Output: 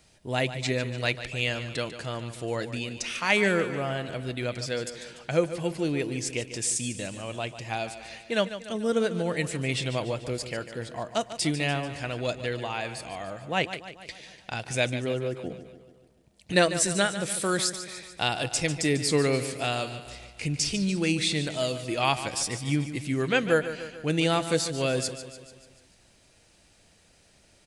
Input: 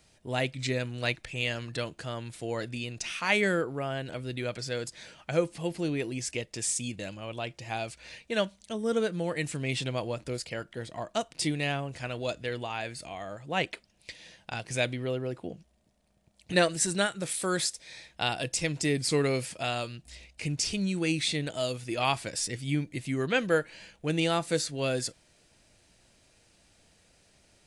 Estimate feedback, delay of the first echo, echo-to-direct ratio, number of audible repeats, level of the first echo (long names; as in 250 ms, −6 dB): 56%, 146 ms, −10.5 dB, 5, −12.0 dB